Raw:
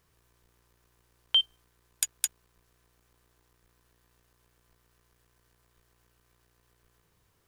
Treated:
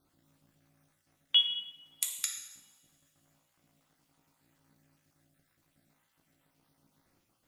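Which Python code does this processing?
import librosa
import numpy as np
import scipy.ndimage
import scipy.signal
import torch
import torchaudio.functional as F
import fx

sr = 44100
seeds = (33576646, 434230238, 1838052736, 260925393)

y = fx.spec_dropout(x, sr, seeds[0], share_pct=42)
y = y * np.sin(2.0 * np.pi * 210.0 * np.arange(len(y)) / sr)
y = fx.rev_double_slope(y, sr, seeds[1], early_s=0.86, late_s=2.9, knee_db=-25, drr_db=2.0)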